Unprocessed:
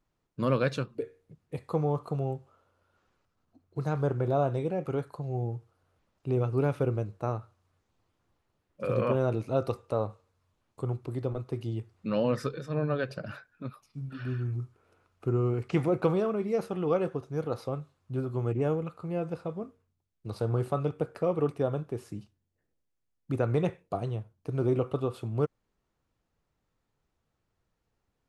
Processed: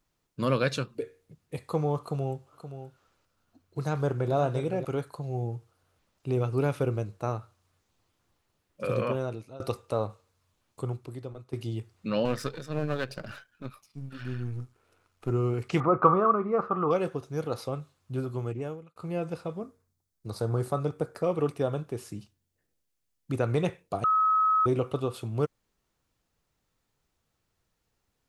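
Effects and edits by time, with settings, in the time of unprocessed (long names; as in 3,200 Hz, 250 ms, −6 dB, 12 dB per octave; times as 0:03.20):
0:02.00–0:04.85: single-tap delay 524 ms −10.5 dB
0:08.90–0:09.60: fade out, to −22.5 dB
0:10.83–0:11.53: fade out quadratic, to −10.5 dB
0:12.25–0:15.30: gain on one half-wave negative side −7 dB
0:15.80–0:16.91: low-pass with resonance 1,200 Hz, resonance Q 9.2
0:18.24–0:18.96: fade out
0:19.62–0:21.24: parametric band 2,800 Hz −9.5 dB 0.6 octaves
0:24.04–0:24.66: beep over 1,280 Hz −22 dBFS
whole clip: high-shelf EQ 2,500 Hz +9 dB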